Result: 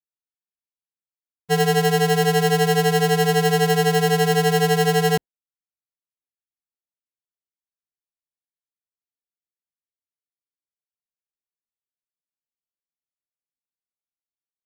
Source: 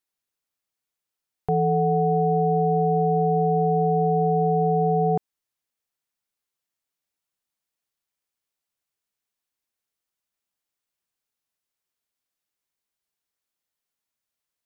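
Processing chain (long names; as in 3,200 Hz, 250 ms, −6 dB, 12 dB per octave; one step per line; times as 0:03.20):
decimation without filtering 37×
downward expander −19 dBFS
level +3.5 dB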